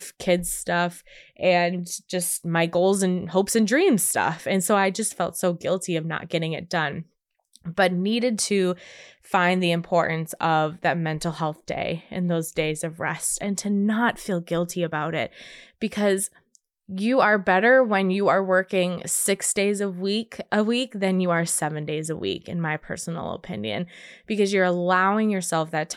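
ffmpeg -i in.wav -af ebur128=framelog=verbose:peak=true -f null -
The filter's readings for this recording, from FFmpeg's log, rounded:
Integrated loudness:
  I:         -23.5 LUFS
  Threshold: -33.7 LUFS
Loudness range:
  LRA:         5.0 LU
  Threshold: -43.8 LUFS
  LRA low:   -26.1 LUFS
  LRA high:  -21.2 LUFS
True peak:
  Peak:       -7.9 dBFS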